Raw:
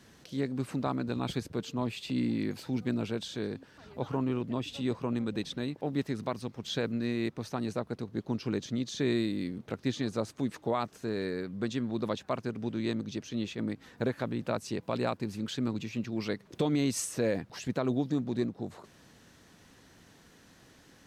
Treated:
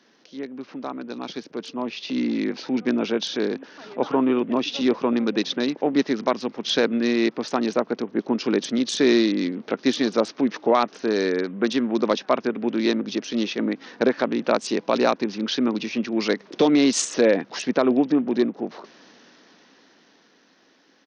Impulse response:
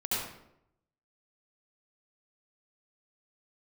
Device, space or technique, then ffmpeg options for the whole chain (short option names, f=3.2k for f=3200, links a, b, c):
Bluetooth headset: -af "highpass=f=230:w=0.5412,highpass=f=230:w=1.3066,dynaudnorm=f=340:g=13:m=12.5dB,aresample=16000,aresample=44100" -ar 48000 -c:a sbc -b:a 64k